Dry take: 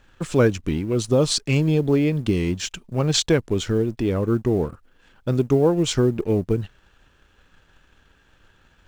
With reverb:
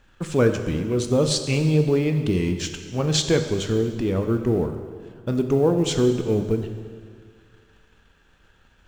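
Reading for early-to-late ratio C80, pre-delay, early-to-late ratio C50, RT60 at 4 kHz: 9.0 dB, 3 ms, 8.0 dB, 1.7 s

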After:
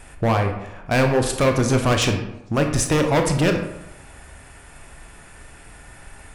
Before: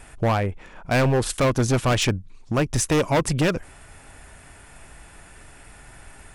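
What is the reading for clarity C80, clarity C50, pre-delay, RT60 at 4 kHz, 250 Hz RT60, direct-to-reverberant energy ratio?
9.0 dB, 7.0 dB, 22 ms, 0.50 s, 0.90 s, 4.0 dB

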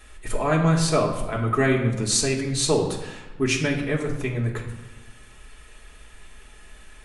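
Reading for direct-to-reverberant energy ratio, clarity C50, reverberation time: -3.0 dB, 7.0 dB, 1.1 s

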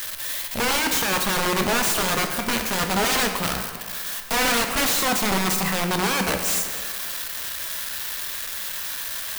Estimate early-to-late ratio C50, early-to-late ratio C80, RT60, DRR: 6.0 dB, 7.5 dB, 2.0 s, 4.5 dB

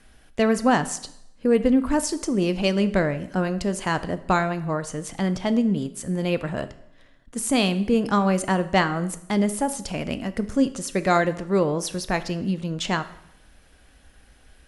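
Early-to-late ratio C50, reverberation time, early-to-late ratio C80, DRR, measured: 15.0 dB, 0.75 s, 17.5 dB, 11.5 dB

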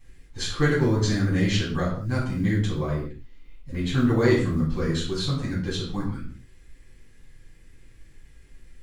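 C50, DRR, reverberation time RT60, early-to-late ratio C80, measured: 4.5 dB, -9.5 dB, not exponential, 8.0 dB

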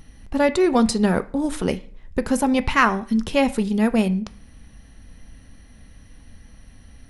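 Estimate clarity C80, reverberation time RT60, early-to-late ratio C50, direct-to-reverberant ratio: 22.0 dB, 0.50 s, 18.0 dB, 11.0 dB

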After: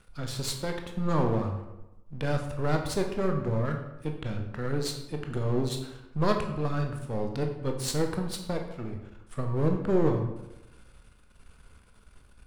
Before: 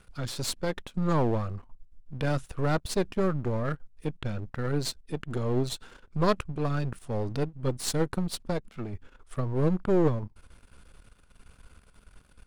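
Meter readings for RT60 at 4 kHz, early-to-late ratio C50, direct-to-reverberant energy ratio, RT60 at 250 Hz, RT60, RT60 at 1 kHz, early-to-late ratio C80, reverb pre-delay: 0.65 s, 7.0 dB, 3.0 dB, 0.95 s, 1.0 s, 0.95 s, 9.0 dB, 16 ms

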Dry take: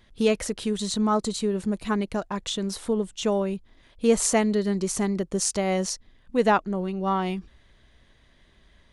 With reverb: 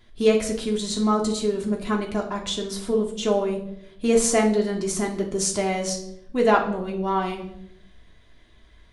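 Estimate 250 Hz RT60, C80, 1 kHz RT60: 0.95 s, 12.5 dB, 0.65 s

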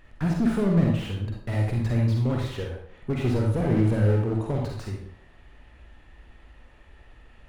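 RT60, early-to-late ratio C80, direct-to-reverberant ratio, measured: 0.60 s, 6.0 dB, -1.0 dB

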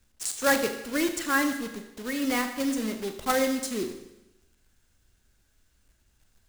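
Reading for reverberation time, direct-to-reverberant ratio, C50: 0.95 s, 6.5 dB, 9.0 dB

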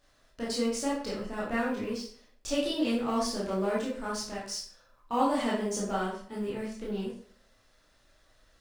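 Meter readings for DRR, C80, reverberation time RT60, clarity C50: -6.5 dB, 8.5 dB, 0.55 s, 3.5 dB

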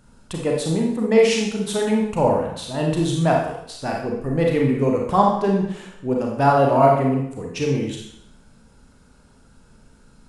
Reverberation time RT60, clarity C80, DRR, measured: 0.75 s, 6.0 dB, -1.0 dB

